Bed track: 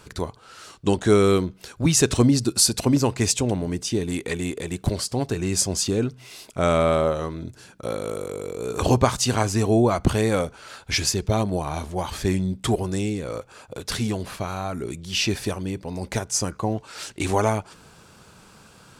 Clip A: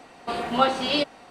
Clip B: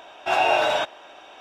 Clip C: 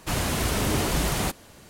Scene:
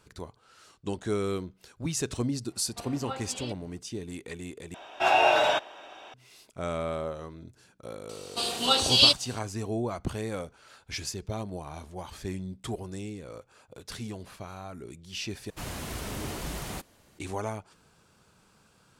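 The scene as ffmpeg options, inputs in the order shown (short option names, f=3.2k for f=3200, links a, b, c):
-filter_complex "[1:a]asplit=2[a][b];[0:a]volume=-12.5dB[c];[b]aexciter=amount=11.6:drive=2.4:freq=3k[d];[c]asplit=3[e][f][g];[e]atrim=end=4.744[h];[2:a]atrim=end=1.4,asetpts=PTS-STARTPTS,volume=-1.5dB[i];[f]atrim=start=6.136:end=15.504[j];[3:a]atrim=end=1.69,asetpts=PTS-STARTPTS,volume=-11dB[k];[g]atrim=start=17.186[l];[a]atrim=end=1.3,asetpts=PTS-STARTPTS,volume=-17dB,afade=t=in:d=0.004:c=hsin,afade=t=out:st=1.296:d=0.004:c=hsin,adelay=2490[m];[d]atrim=end=1.3,asetpts=PTS-STARTPTS,volume=-7.5dB,afade=t=in:d=0.004:c=hsin,afade=t=out:st=1.296:d=0.004:c=hsin,adelay=8090[n];[h][i]acrossfade=d=0.004:c1=hsin:c2=hsin[o];[o][j]acrossfade=d=0.004:c1=hsin:c2=hsin[p];[p][k]acrossfade=d=0.004:c1=hsin:c2=hsin[q];[q][l]acrossfade=d=0.004:c1=hsin:c2=hsin[r];[r][m][n]amix=inputs=3:normalize=0"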